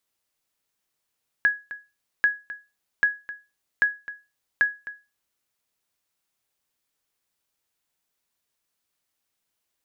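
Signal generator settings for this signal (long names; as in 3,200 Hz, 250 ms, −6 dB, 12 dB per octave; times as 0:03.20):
ping with an echo 1,670 Hz, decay 0.27 s, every 0.79 s, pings 5, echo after 0.26 s, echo −16 dB −11.5 dBFS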